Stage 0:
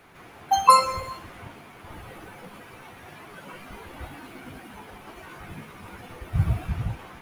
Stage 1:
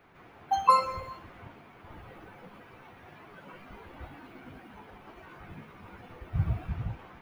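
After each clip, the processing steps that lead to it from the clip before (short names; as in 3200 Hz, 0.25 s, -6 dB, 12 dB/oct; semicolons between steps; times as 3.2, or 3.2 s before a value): bell 10000 Hz -14 dB 1.8 oct; gain -5.5 dB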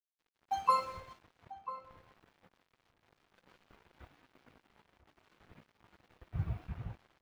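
crossover distortion -46.5 dBFS; outdoor echo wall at 170 m, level -13 dB; gain -7 dB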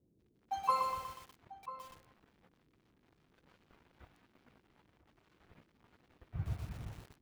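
band noise 33–380 Hz -70 dBFS; lo-fi delay 0.121 s, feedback 55%, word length 8-bit, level -4.5 dB; gain -3.5 dB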